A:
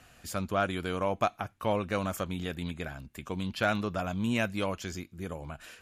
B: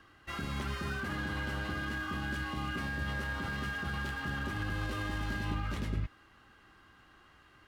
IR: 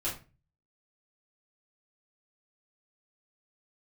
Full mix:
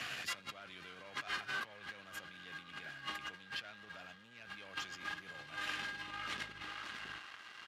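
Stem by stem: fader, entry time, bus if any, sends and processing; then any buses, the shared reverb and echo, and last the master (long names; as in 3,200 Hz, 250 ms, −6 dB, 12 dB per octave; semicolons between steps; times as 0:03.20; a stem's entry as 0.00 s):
−4.0 dB, 0.00 s, no send, no echo send, graphic EQ with 10 bands 125 Hz +11 dB, 1,000 Hz −7 dB, 8,000 Hz −6 dB; multiband upward and downward compressor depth 40%
0.0 dB, 0.00 s, no send, echo send −7.5 dB, pitch vibrato 0.93 Hz 18 cents; automatic ducking −11 dB, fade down 0.85 s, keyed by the first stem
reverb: not used
echo: repeating echo 562 ms, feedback 29%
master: leveller curve on the samples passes 2; compressor whose output falls as the input rises −38 dBFS, ratio −1; resonant band-pass 3,000 Hz, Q 0.66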